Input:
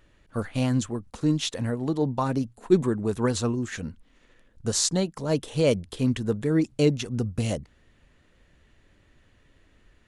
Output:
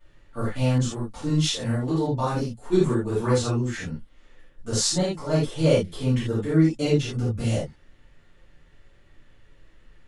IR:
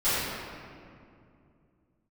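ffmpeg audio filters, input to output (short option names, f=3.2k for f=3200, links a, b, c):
-filter_complex "[1:a]atrim=start_sample=2205,atrim=end_sample=4410[a];[0:a][a]afir=irnorm=-1:irlink=0,asettb=1/sr,asplit=3[b][c][d];[b]atrim=end=0.784[e];[c]atrim=start=0.78:end=3.09,asetpts=PTS-STARTPTS,afade=t=in:d=0.004:c=qsin,afade=t=out:st=2.306:d=0.004:c=qsin,adynamicequalizer=threshold=0.0251:dfrequency=2900:dqfactor=0.7:tfrequency=2900:tqfactor=0.7:attack=5:release=100:ratio=0.375:range=2:mode=boostabove:tftype=highshelf[f];[d]atrim=start=3.086[g];[e][f]acrossfade=d=0.004:c1=hsin:c2=qsin[h];[h][g]acrossfade=d=0.004:c1=qsin:c2=hsin,volume=-9dB"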